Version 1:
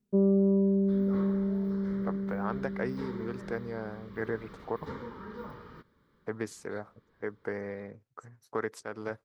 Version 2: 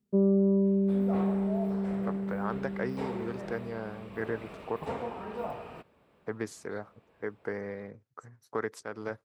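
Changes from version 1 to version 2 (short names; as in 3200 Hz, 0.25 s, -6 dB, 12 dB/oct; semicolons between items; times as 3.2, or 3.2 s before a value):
second sound: remove fixed phaser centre 2600 Hz, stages 6; master: add HPF 47 Hz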